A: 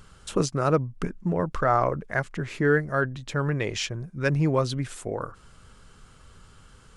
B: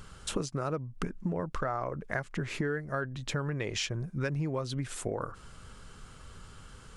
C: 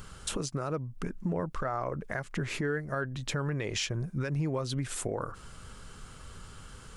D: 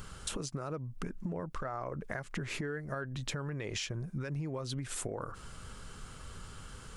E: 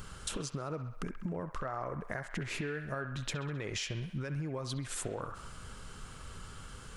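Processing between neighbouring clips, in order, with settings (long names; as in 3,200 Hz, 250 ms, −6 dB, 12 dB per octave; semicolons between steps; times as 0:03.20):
downward compressor 10 to 1, threshold −31 dBFS, peak gain reduction 15 dB; level +2 dB
brickwall limiter −24.5 dBFS, peak gain reduction 7.5 dB; high-shelf EQ 9,900 Hz +6 dB; level +2 dB
downward compressor, threshold −34 dBFS, peak gain reduction 7.5 dB
delay with a band-pass on its return 66 ms, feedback 64%, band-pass 1,600 Hz, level −8 dB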